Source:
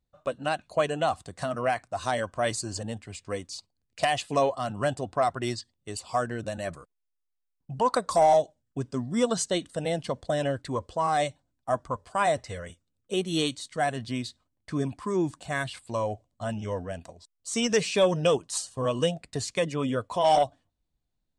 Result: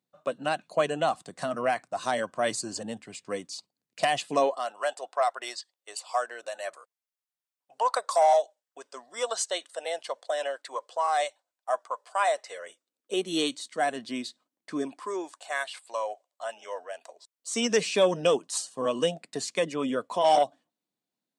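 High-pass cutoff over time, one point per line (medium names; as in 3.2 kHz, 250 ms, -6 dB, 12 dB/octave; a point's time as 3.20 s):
high-pass 24 dB/octave
4.29 s 160 Hz
4.76 s 550 Hz
12.31 s 550 Hz
13.31 s 230 Hz
14.74 s 230 Hz
15.35 s 550 Hz
17.01 s 550 Hz
17.65 s 200 Hz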